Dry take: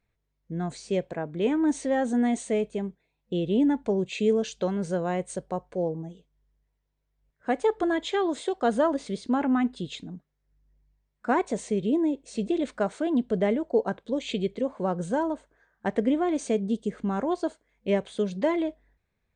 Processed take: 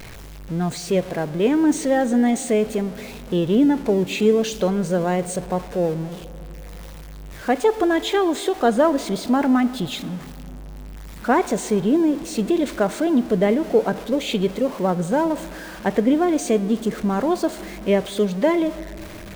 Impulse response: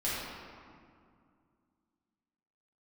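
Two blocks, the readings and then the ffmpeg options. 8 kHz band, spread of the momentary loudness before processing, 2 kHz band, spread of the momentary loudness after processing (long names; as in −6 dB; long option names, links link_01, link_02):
+10.5 dB, 10 LU, +7.0 dB, 18 LU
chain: -filter_complex "[0:a]aeval=exprs='val(0)+0.5*0.0126*sgn(val(0))':channel_layout=same,asplit=2[link_01][link_02];[1:a]atrim=start_sample=2205,asetrate=27783,aresample=44100[link_03];[link_02][link_03]afir=irnorm=-1:irlink=0,volume=-26dB[link_04];[link_01][link_04]amix=inputs=2:normalize=0,volume=5.5dB"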